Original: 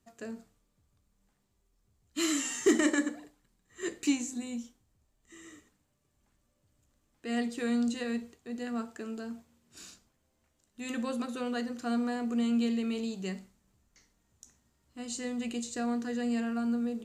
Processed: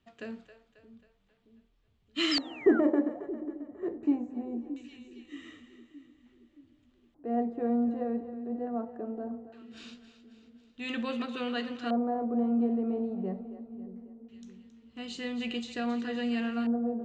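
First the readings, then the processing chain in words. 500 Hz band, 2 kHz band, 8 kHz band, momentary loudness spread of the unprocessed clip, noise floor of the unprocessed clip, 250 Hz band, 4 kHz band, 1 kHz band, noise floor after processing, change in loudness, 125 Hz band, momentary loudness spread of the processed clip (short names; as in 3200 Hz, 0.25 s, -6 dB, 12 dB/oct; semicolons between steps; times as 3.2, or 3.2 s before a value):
+3.5 dB, -1.5 dB, under -15 dB, 16 LU, -75 dBFS, +1.0 dB, +4.0 dB, +4.0 dB, -70 dBFS, +1.0 dB, n/a, 20 LU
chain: split-band echo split 380 Hz, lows 0.623 s, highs 0.27 s, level -12.5 dB; painted sound fall, 2.31–2.8, 1300–5400 Hz -26 dBFS; LFO low-pass square 0.21 Hz 710–3200 Hz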